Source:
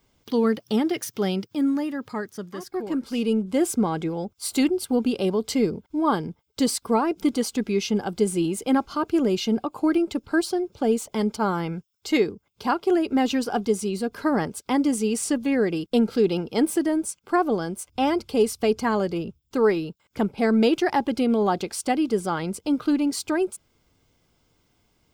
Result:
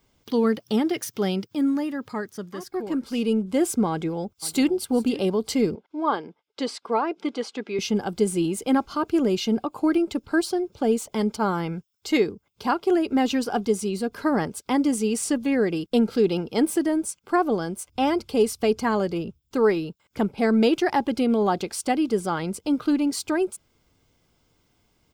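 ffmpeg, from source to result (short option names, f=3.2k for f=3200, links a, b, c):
-filter_complex "[0:a]asplit=2[a][b];[b]afade=t=in:st=3.9:d=0.01,afade=t=out:st=4.71:d=0.01,aecho=0:1:520|1040|1560:0.141254|0.0494388|0.0173036[c];[a][c]amix=inputs=2:normalize=0,asettb=1/sr,asplit=3[d][e][f];[d]atrim=end=5.754[g];[e]atrim=start=5.75:end=7.79,asetpts=PTS-STARTPTS,afade=t=in:d=0.004:c=qsin,afade=t=out:st=2.036:d=0.004:c=qsin,highpass=390,lowpass=3.8k[h];[f]atrim=start=7.786[i];[g][h]acrossfade=d=0.004:c1=hsin:c2=qsin[j];[j][i]acrossfade=d=0.004:c1=qsin:c2=hsin"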